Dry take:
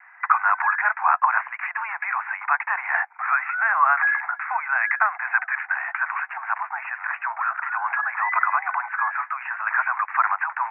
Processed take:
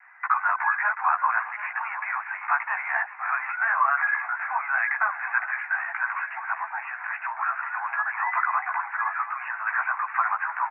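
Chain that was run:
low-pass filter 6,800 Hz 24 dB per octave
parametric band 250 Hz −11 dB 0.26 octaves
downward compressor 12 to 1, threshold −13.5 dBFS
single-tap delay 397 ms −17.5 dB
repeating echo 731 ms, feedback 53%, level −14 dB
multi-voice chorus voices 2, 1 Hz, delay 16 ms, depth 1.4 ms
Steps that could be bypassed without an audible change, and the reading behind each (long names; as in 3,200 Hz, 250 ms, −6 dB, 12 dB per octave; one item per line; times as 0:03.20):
low-pass filter 6,800 Hz: nothing at its input above 2,700 Hz
parametric band 250 Hz: nothing at its input below 600 Hz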